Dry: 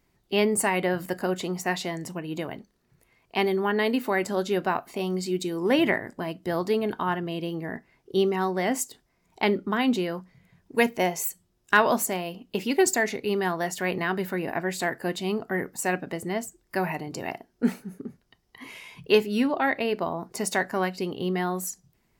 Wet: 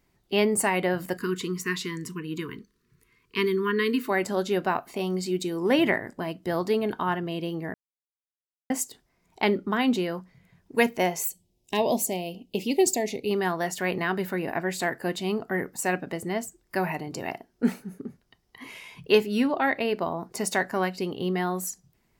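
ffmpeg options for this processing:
-filter_complex "[0:a]asplit=3[a][b][c];[a]afade=t=out:st=1.17:d=0.02[d];[b]asuperstop=centerf=680:order=20:qfactor=1.4,afade=t=in:st=1.17:d=0.02,afade=t=out:st=4.08:d=0.02[e];[c]afade=t=in:st=4.08:d=0.02[f];[d][e][f]amix=inputs=3:normalize=0,asettb=1/sr,asplit=3[g][h][i];[g]atrim=end=11.264[j];[h]atrim=start=11.26:end=13.31,asetpts=PTS-STARTPTS,afade=t=in:d=0.004:c=qsin,afade=t=out:st=2.046:d=0.004:c=qsin,asuperstop=centerf=1400:order=4:qfactor=0.85[k];[i]atrim=start=13.306[l];[j][k]acrossfade=d=0.004:c1=hsin:c2=qsin[m];[m][l]acrossfade=d=0.004:c1=qsin:c2=hsin,asplit=3[n][o][p];[n]atrim=end=7.74,asetpts=PTS-STARTPTS,afade=t=out:st=7.736:d=0.004:c=hsin[q];[o]atrim=start=7.74:end=8.7,asetpts=PTS-STARTPTS,volume=0[r];[p]atrim=start=8.7,asetpts=PTS-STARTPTS,afade=t=in:d=0.004:c=hsin[s];[q][r][s]concat=n=3:v=0:a=1"

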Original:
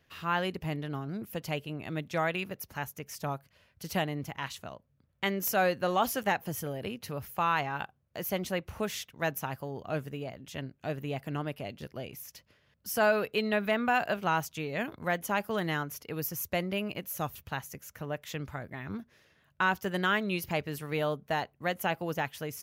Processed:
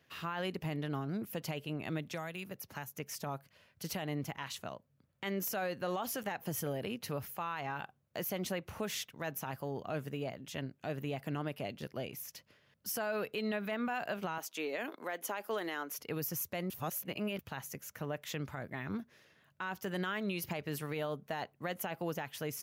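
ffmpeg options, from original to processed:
-filter_complex "[0:a]asettb=1/sr,asplit=3[a][b][c];[a]atrim=end=2.094[d];[b]atrim=start=2.09:end=2.97,asetpts=PTS-STARTPTS,afade=t=in:d=0.004:c=qsin,afade=t=out:st=0.876:d=0.004:c=qsin,acrossover=split=170|6000[e][f][g];[e]acompressor=threshold=-49dB:ratio=4[h];[f]acompressor=threshold=-41dB:ratio=4[i];[g]acompressor=threshold=-46dB:ratio=4[j];[h][i][j]amix=inputs=3:normalize=0[k];[c]atrim=start=2.966[l];[d][k]acrossfade=d=0.004:c1=hsin:c2=qsin[m];[m][l]acrossfade=d=0.004:c1=qsin:c2=hsin,asettb=1/sr,asplit=3[n][o][p];[n]atrim=end=14.384[q];[o]atrim=start=14.38:end=15.98,asetpts=PTS-STARTPTS,afade=t=in:d=0.004:c=qsin,afade=t=out:st=1.596:d=0.004:c=qsin,highpass=f=280:w=0.5412,highpass=f=280:w=1.3066[r];[p]atrim=start=15.976[s];[q][r]acrossfade=d=0.004:c1=hsin:c2=qsin[t];[t][s]acrossfade=d=0.004:c1=qsin:c2=hsin,asplit=3[u][v][w];[u]atrim=end=16.702[x];[v]atrim=start=16.698:end=17.392,asetpts=PTS-STARTPTS,areverse[y];[w]atrim=start=17.388[z];[x][y]acrossfade=d=0.004:c1=hsin:c2=hsin[aa];[aa][z]acrossfade=d=0.004:c1=hsin:c2=hsin,highpass=110,acompressor=threshold=-29dB:ratio=6,alimiter=level_in=3.5dB:limit=-24dB:level=0:latency=1:release=42,volume=-3.5dB"

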